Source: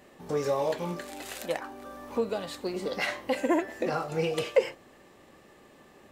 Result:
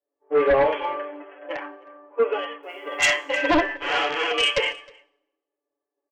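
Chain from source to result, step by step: low-pass opened by the level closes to 420 Hz, open at -24.5 dBFS; 0.93–1.76 low shelf 430 Hz +6.5 dB; 3.76–4.32 Schmitt trigger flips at -36 dBFS; comb 7 ms, depth 85%; harmonic-percussive split percussive -13 dB; tilt +4.5 dB/oct; FFT band-pass 270–3400 Hz; 2.63–3.1 requantised 12-bit, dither triangular; sine folder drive 7 dB, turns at -17 dBFS; on a send: echo 0.314 s -16.5 dB; on the sum: Schroeder reverb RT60 1.7 s, DRR 19.5 dB; three-band expander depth 100%

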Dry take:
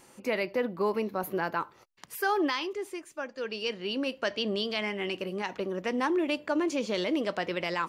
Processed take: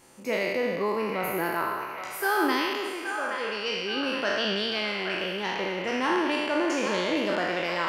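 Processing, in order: spectral trails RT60 1.76 s; band-limited delay 0.823 s, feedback 55%, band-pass 1600 Hz, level -5.5 dB; gain -1.5 dB

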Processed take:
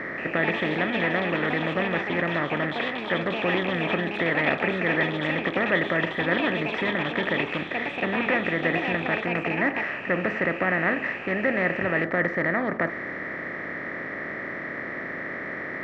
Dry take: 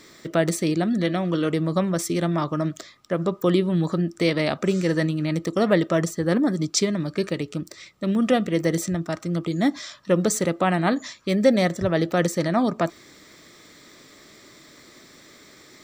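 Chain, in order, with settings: per-bin compression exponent 0.4; ladder low-pass 2000 Hz, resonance 75%; echoes that change speed 0.179 s, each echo +5 st, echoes 2, each echo -6 dB

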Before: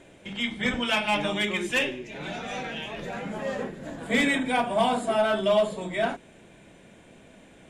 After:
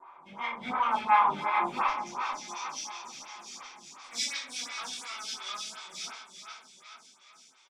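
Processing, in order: minimum comb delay 0.87 ms; band-pass 1000 Hz, Q 4.6, from 1.88 s 5700 Hz; feedback echo 0.439 s, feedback 55%, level -8 dB; shoebox room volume 55 m³, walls mixed, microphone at 1.7 m; photocell phaser 2.8 Hz; gain +6 dB

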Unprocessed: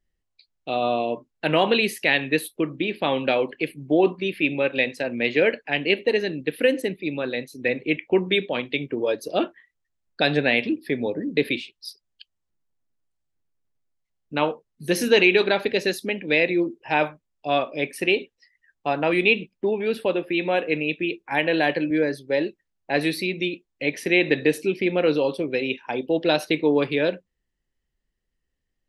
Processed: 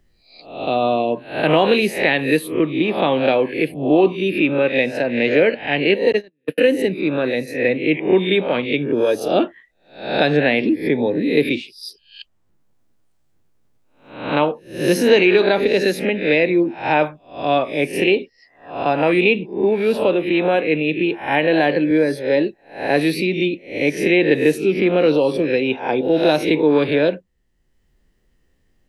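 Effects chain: spectral swells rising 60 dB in 0.44 s; tilt shelf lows +3.5 dB, about 1200 Hz; 6.12–6.58 gate -17 dBFS, range -51 dB; three-band squash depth 40%; gain +2.5 dB

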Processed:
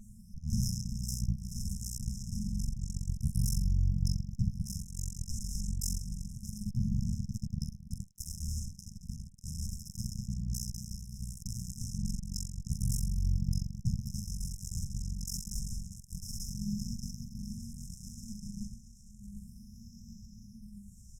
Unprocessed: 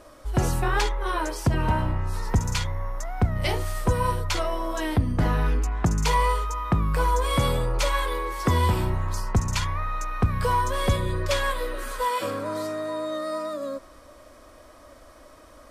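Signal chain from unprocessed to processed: LPF 8000 Hz 12 dB/oct; comb 3.7 ms, depth 46%; full-wave rectifier; echo with dull and thin repeats by turns 0.561 s, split 1100 Hz, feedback 53%, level -7 dB; phaser stages 6, 0.42 Hz, lowest notch 180–1200 Hz; FDN reverb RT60 0.48 s, low-frequency decay 0.7×, high-frequency decay 0.6×, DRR -10 dB; tube stage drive 29 dB, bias 0.7; speed mistake 45 rpm record played at 33 rpm; brick-wall FIR band-stop 220–5100 Hz; gain +6.5 dB

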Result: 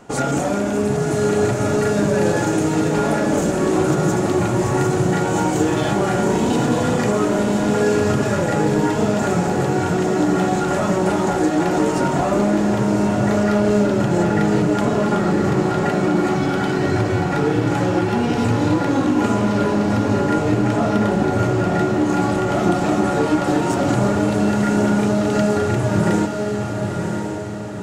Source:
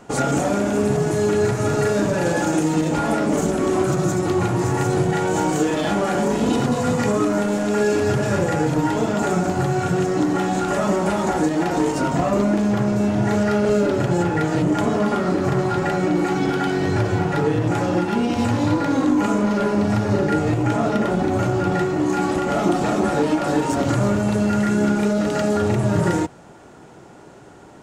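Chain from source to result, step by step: diffused feedback echo 1.034 s, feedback 47%, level -4.5 dB

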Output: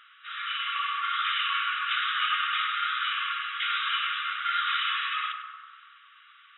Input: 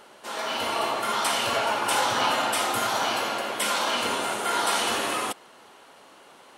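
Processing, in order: on a send: tape echo 98 ms, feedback 88%, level -4.5 dB, low-pass 1500 Hz; on the sum: FFT band-pass 1100–3900 Hz

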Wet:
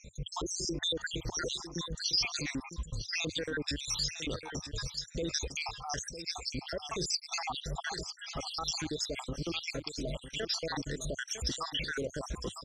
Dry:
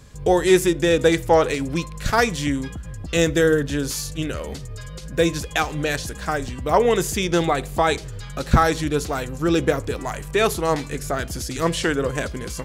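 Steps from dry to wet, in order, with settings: random spectral dropouts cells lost 77%; bell 94 Hz -9 dB 0.31 oct; limiter -28 dBFS, peak gain reduction 21.5 dB; synth low-pass 5200 Hz, resonance Q 4.3; echo 0.954 s -11 dB

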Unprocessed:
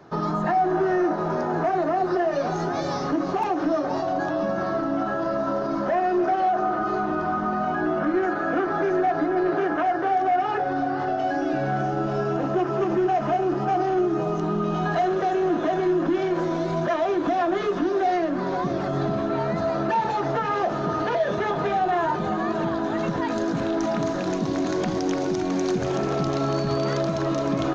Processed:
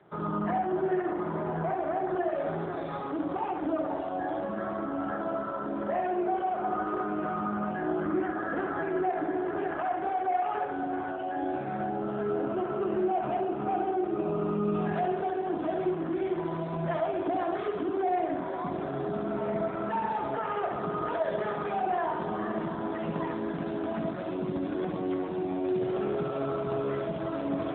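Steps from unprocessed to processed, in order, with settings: notches 50/100/150/200/250/300/350/400 Hz; flutter echo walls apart 11.6 m, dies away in 0.96 s; gain -7.5 dB; AMR-NB 7.4 kbps 8000 Hz

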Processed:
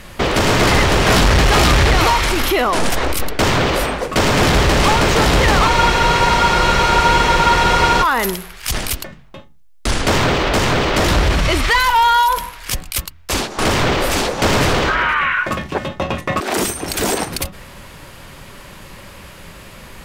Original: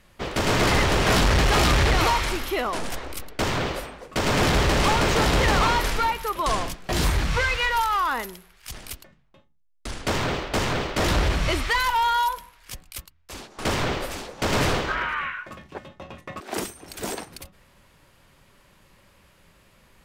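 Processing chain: maximiser +27 dB; spectral freeze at 5.72, 2.30 s; gain -7.5 dB

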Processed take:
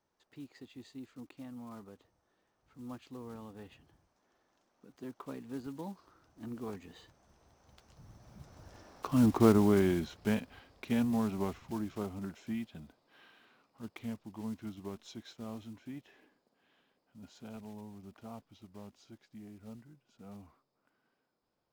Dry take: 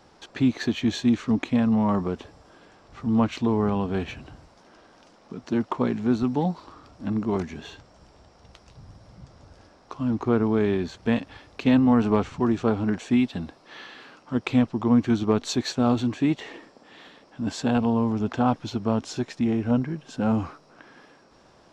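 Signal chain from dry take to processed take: block floating point 5-bit; Doppler pass-by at 9.17, 31 m/s, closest 14 m

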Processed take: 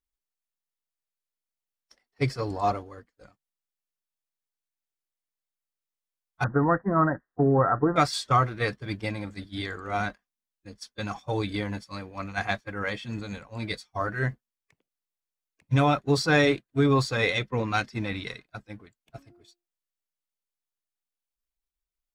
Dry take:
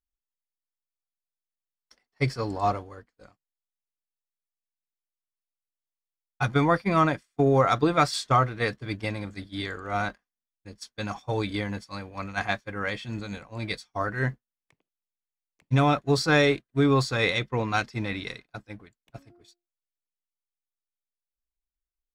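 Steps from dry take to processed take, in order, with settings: bin magnitudes rounded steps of 15 dB; 6.44–7.96 Chebyshev low-pass 1900 Hz, order 10

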